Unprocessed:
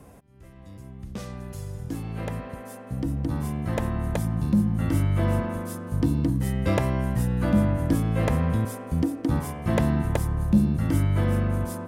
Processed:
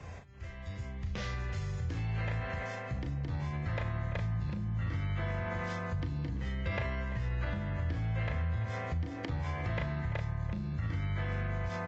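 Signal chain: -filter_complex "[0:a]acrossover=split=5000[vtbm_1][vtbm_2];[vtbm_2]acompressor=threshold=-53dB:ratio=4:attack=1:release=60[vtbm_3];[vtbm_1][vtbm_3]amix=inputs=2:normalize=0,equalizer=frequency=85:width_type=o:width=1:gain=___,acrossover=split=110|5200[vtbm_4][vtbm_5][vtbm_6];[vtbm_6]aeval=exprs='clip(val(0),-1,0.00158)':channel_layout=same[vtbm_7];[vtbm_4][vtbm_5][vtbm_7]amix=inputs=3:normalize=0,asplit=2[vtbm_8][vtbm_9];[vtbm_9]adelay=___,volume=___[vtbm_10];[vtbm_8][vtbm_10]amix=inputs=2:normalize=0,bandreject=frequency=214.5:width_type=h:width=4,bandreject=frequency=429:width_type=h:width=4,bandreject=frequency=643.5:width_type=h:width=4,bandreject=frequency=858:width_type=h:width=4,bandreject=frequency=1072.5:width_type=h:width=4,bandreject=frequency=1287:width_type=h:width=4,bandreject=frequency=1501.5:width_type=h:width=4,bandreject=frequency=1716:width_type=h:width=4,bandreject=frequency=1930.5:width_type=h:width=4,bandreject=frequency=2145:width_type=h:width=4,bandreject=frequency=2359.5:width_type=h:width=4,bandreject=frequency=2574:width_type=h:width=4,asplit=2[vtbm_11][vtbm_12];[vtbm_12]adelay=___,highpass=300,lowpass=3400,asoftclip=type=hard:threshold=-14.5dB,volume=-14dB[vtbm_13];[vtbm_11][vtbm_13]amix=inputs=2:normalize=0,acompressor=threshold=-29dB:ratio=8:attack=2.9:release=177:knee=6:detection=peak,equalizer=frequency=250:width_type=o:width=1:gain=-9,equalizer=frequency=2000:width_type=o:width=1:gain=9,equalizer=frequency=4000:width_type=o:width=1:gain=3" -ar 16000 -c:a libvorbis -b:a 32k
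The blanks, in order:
8.5, 35, -4.5dB, 340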